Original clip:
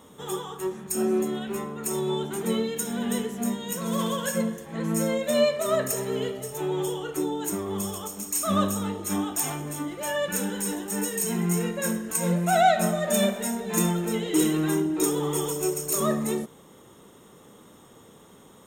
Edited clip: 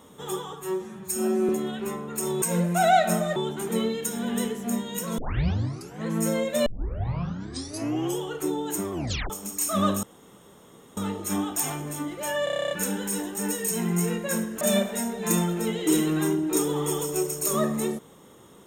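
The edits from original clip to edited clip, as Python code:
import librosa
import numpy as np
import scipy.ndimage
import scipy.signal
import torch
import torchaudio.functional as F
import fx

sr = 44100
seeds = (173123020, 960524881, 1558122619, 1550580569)

y = fx.edit(x, sr, fx.stretch_span(start_s=0.53, length_s=0.64, factor=1.5),
    fx.tape_start(start_s=3.92, length_s=0.86),
    fx.tape_start(start_s=5.4, length_s=1.54),
    fx.tape_stop(start_s=7.66, length_s=0.38),
    fx.insert_room_tone(at_s=8.77, length_s=0.94),
    fx.stutter(start_s=10.24, slice_s=0.03, count=10),
    fx.move(start_s=12.14, length_s=0.94, to_s=2.1), tone=tone)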